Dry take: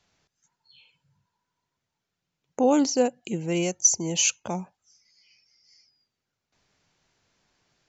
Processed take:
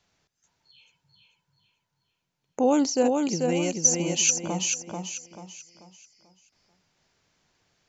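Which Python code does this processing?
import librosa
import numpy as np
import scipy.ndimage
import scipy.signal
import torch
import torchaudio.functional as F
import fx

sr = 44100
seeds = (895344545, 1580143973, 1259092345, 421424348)

y = fx.echo_feedback(x, sr, ms=438, feedback_pct=36, wet_db=-4.0)
y = y * 10.0 ** (-1.0 / 20.0)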